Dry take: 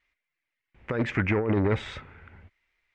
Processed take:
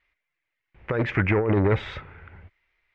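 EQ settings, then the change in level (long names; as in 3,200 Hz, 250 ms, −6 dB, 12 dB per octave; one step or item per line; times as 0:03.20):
high-frequency loss of the air 150 metres
parametric band 240 Hz −7 dB 0.4 octaves
+4.5 dB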